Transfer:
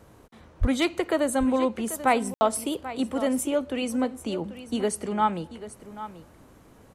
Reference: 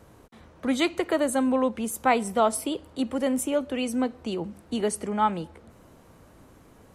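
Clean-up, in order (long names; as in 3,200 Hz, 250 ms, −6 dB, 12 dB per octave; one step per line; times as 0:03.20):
clipped peaks rebuilt −12 dBFS
0:00.60–0:00.72: high-pass filter 140 Hz 24 dB per octave
ambience match 0:02.34–0:02.41
echo removal 788 ms −14 dB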